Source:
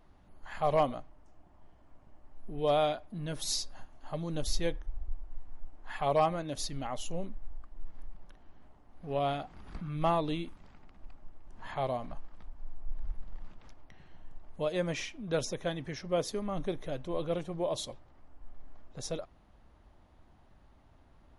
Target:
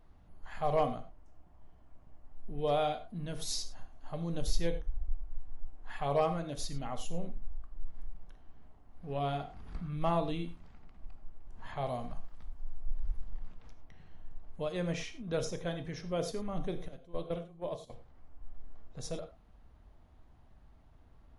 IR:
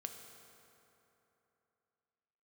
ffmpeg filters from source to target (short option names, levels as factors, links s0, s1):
-filter_complex "[0:a]asettb=1/sr,asplit=3[s0][s1][s2];[s0]atrim=end=11.864[s3];[s1]atrim=start=11.86:end=13.28,asetpts=PTS-STARTPTS,afade=t=in:d=0.004:c=qsin,afade=t=out:st=1.416:d=0.004:c=qsin,aemphasis=mode=production:type=cd[s4];[s2]atrim=start=13.276[s5];[s3][s4]acrossfade=d=0.004:c1=hsin:c2=qsin[s6];[s6][s5]acrossfade=d=0.004:c1=qsin:c2=hsin,asettb=1/sr,asplit=3[s7][s8][s9];[s7]atrim=end=16.884[s10];[s8]atrim=start=16.88:end=17.9,asetpts=PTS-STARTPTS,afade=t=in:d=0.004:c=qsin,afade=t=out:st=1.016:d=0.004:c=qsin,agate=range=0.158:threshold=0.0282:ratio=16:detection=peak[s11];[s9]atrim=start=17.896[s12];[s10][s11]acrossfade=d=0.004:c1=hsin:c2=qsin[s13];[s13][s12]acrossfade=d=0.004:c1=qsin:c2=hsin,lowshelf=f=120:g=7.5[s14];[1:a]atrim=start_sample=2205,afade=t=out:st=0.16:d=0.01,atrim=end_sample=7497[s15];[s14][s15]afir=irnorm=-1:irlink=0"